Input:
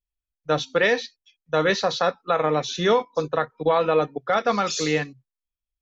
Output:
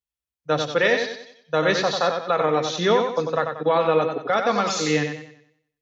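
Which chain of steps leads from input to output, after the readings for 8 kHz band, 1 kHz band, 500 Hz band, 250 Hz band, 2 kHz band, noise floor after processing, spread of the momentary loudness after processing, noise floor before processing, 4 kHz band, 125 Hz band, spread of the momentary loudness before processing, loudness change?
n/a, +1.0 dB, +1.0 dB, +1.5 dB, +1.0 dB, under -85 dBFS, 7 LU, under -85 dBFS, +1.0 dB, +1.0 dB, 6 LU, +1.0 dB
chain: HPF 85 Hz; warbling echo 93 ms, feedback 40%, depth 52 cents, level -6 dB

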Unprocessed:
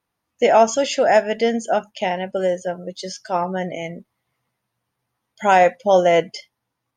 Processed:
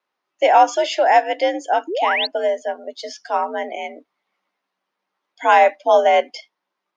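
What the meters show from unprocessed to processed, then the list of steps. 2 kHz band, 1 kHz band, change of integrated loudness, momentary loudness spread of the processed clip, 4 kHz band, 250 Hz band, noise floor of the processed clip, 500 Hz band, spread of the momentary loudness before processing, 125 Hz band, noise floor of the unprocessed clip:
+2.5 dB, +3.5 dB, +1.0 dB, 17 LU, +3.5 dB, -7.0 dB, -80 dBFS, -1.0 dB, 16 LU, under -30 dB, -79 dBFS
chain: painted sound rise, 1.87–2.27, 230–4600 Hz -22 dBFS; frequency shift +68 Hz; three-band isolator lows -21 dB, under 340 Hz, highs -21 dB, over 6000 Hz; gain +1.5 dB

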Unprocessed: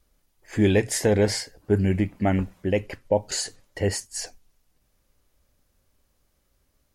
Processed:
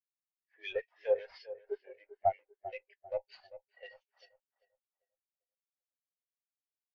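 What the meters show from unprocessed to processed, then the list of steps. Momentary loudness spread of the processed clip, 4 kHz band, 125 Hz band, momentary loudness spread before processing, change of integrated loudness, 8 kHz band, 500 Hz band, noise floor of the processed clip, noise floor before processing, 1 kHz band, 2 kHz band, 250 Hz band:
20 LU, -21.0 dB, -35.0 dB, 12 LU, -13.0 dB, under -40 dB, -11.5 dB, under -85 dBFS, -70 dBFS, -4.0 dB, -16.0 dB, under -35 dB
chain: CVSD 32 kbps; HPF 600 Hz 24 dB/oct; dynamic EQ 3000 Hz, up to +6 dB, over -50 dBFS, Q 1.4; in parallel at +1 dB: level quantiser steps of 16 dB; on the sum: one-sided clip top -26.5 dBFS, bottom -13.5 dBFS; harmonic tremolo 5.3 Hz, depth 70%, crossover 1600 Hz; on a send: darkening echo 0.395 s, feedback 62%, low-pass 2800 Hz, level -6 dB; on the sum: spectral expander 2.5:1; gain -2 dB

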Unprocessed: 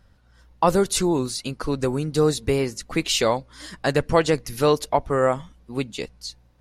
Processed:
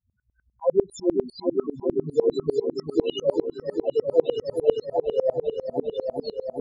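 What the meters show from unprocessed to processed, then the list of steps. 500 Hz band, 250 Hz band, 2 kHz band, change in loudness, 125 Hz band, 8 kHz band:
0.0 dB, -4.0 dB, under -20 dB, -3.0 dB, -13.5 dB, under -20 dB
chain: HPF 210 Hz 6 dB/oct; loudest bins only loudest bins 2; on a send: repeats that get brighter 0.399 s, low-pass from 400 Hz, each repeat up 2 oct, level -3 dB; on the sum: dB-ramp tremolo swelling 10 Hz, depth 27 dB; gain +8.5 dB

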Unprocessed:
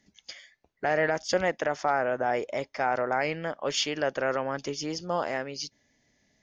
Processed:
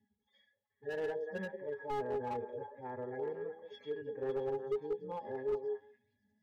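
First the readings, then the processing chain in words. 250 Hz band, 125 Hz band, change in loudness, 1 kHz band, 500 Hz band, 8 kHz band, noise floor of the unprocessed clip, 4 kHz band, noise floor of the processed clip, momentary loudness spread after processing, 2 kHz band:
-11.5 dB, -11.0 dB, -11.0 dB, -14.0 dB, -8.0 dB, n/a, -74 dBFS, -25.0 dB, -85 dBFS, 8 LU, -18.5 dB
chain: median-filter separation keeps harmonic; dynamic EQ 410 Hz, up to +8 dB, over -49 dBFS, Q 4.5; octave resonator G#, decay 0.11 s; on a send: delay with a stepping band-pass 0.185 s, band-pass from 440 Hz, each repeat 1.4 oct, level -3 dB; on the sum: slew limiter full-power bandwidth 10 Hz; gain +2.5 dB

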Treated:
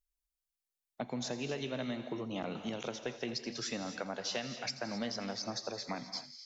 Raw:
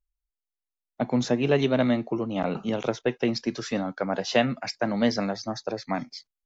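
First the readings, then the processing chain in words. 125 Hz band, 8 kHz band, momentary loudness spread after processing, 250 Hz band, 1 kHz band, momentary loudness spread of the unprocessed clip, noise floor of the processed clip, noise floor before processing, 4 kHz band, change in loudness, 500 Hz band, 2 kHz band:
-14.0 dB, n/a, 3 LU, -14.0 dB, -12.0 dB, 9 LU, under -85 dBFS, under -85 dBFS, -5.0 dB, -12.0 dB, -14.0 dB, -10.5 dB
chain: high shelf 2700 Hz +11 dB; compressor, threshold -28 dBFS, peak gain reduction 13.5 dB; on a send: thin delay 84 ms, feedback 63%, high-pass 2400 Hz, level -14.5 dB; on the sum: non-linear reverb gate 0.29 s rising, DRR 9 dB; gain -7 dB

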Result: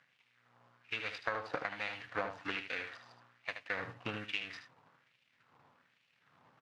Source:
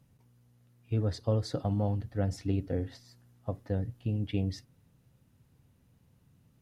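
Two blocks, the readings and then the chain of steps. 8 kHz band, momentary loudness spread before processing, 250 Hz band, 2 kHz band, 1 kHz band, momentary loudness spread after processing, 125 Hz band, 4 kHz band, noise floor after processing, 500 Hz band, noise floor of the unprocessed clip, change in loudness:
n/a, 10 LU, -15.5 dB, +15.5 dB, +3.0 dB, 8 LU, -24.0 dB, +3.5 dB, -75 dBFS, -8.0 dB, -67 dBFS, -7.0 dB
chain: median filter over 41 samples; LFO high-pass sine 1.2 Hz 950–2600 Hz; LPF 4200 Hz 12 dB/oct; bell 110 Hz +9 dB 1.8 oct; compressor 16:1, threshold -49 dBFS, peak gain reduction 14.5 dB; on a send: echo 76 ms -8.5 dB; on the sum: gain +16.5 dB

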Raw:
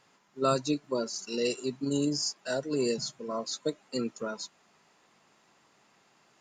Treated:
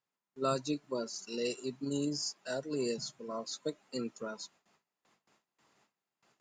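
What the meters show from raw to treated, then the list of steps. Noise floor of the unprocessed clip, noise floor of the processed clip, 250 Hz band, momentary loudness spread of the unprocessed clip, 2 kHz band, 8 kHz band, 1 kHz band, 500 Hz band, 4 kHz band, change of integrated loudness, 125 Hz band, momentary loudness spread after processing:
-66 dBFS, under -85 dBFS, -5.5 dB, 8 LU, -5.5 dB, -5.5 dB, -5.5 dB, -5.5 dB, -5.5 dB, -5.5 dB, -5.5 dB, 7 LU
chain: gate with hold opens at -54 dBFS; gain -5.5 dB

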